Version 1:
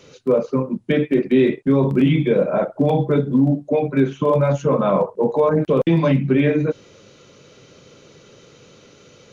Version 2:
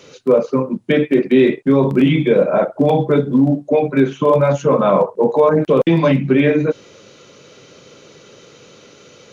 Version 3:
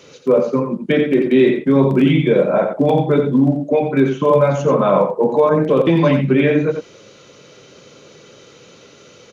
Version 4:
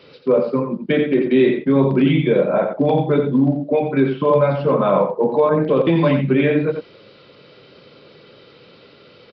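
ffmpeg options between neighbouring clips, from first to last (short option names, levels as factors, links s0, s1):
-af "lowshelf=f=140:g=-9.5,volume=1.78"
-filter_complex "[0:a]asplit=2[s0][s1];[s1]adelay=87.46,volume=0.447,highshelf=f=4000:g=-1.97[s2];[s0][s2]amix=inputs=2:normalize=0,volume=0.891"
-af "aresample=11025,aresample=44100,volume=0.794"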